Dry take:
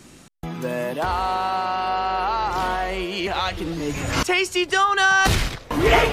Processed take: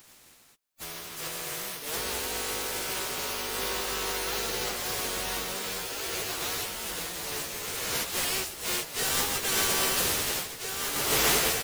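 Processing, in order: spectral contrast reduction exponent 0.16; dynamic bell 440 Hz, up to +7 dB, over -46 dBFS, Q 2.8; on a send: feedback delay 864 ms, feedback 21%, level -6 dB; on the sum: plain phase-vocoder stretch 1.9×; trim -7 dB

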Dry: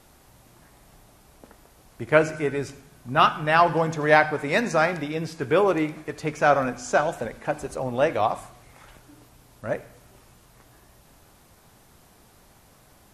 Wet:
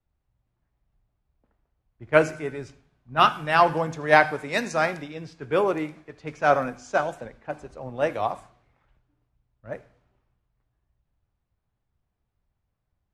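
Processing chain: level-controlled noise filter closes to 2.7 kHz, open at -18.5 dBFS; three bands expanded up and down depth 70%; trim -5 dB

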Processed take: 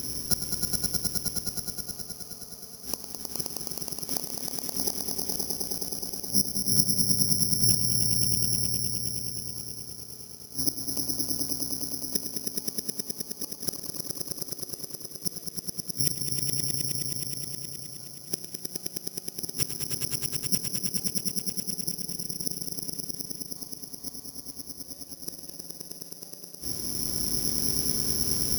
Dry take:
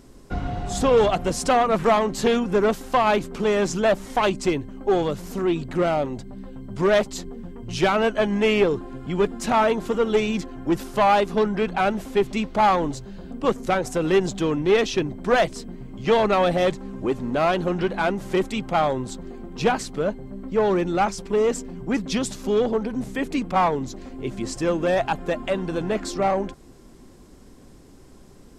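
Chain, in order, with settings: high-pass 60 Hz 24 dB/octave; bass shelf 280 Hz +9.5 dB; reverse; compression 6:1, threshold -25 dBFS, peak gain reduction 13.5 dB; reverse; inverted gate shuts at -25 dBFS, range -38 dB; echo with a slow build-up 105 ms, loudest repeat 5, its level -4 dB; on a send at -15.5 dB: reverberation RT60 4.4 s, pre-delay 23 ms; on the sum: careless resampling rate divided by 8×, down none, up zero stuff; trim +2 dB

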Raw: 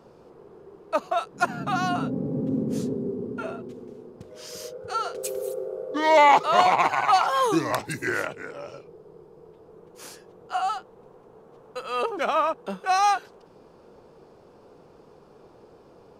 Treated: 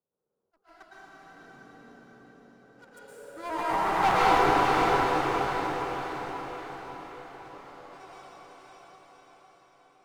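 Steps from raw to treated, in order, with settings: local Wiener filter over 15 samples; Doppler pass-by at 6.60 s, 29 m/s, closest 2.4 m; low-pass that closes with the level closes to 1.2 kHz, closed at -33.5 dBFS; in parallel at -1.5 dB: compression, threshold -51 dBFS, peak gain reduction 29 dB; on the sum: waveshaping leveller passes 2; granular stretch 0.62×, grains 136 ms; one-sided clip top -33 dBFS; on a send: echo that smears into a reverb 518 ms, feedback 56%, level -3 dB; on the sum: plate-style reverb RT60 3.2 s, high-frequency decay 0.95×, pre-delay 100 ms, DRR -8 dB; attacks held to a fixed rise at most 310 dB/s; trim -2 dB

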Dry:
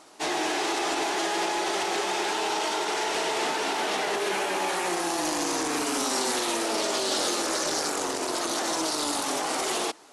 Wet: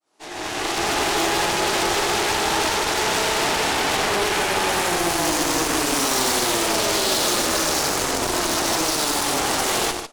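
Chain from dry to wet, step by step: fade-in on the opening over 1.03 s; loudspeakers at several distances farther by 32 m -9 dB, 52 m -8 dB; Chebyshev shaper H 8 -13 dB, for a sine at -12.5 dBFS; trim +3.5 dB

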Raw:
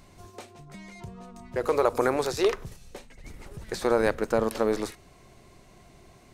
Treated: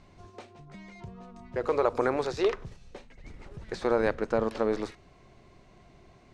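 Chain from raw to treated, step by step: distance through air 110 m; trim -2 dB

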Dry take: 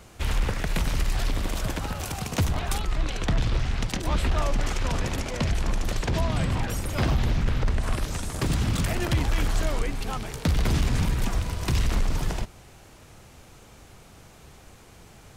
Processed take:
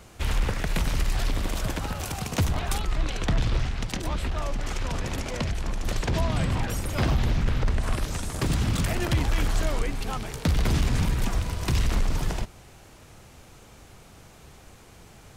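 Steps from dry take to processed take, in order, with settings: 3.66–5.86 s: compression, threshold -24 dBFS, peak gain reduction 6.5 dB

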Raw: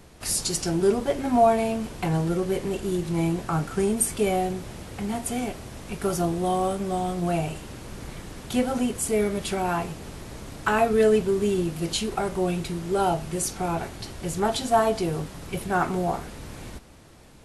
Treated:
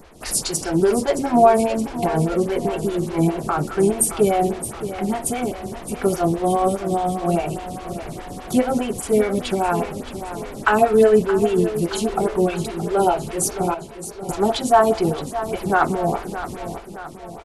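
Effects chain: 13.74–14.29 s: feedback comb 70 Hz, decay 1.6 s, harmonics all, mix 90%; feedback delay 621 ms, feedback 54%, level -12 dB; lamp-driven phase shifter 4.9 Hz; trim +7.5 dB

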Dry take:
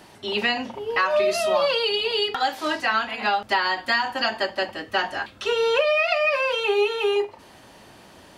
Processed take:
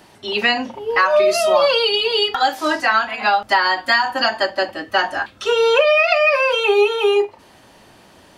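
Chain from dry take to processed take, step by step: spectral noise reduction 6 dB; trim +6.5 dB

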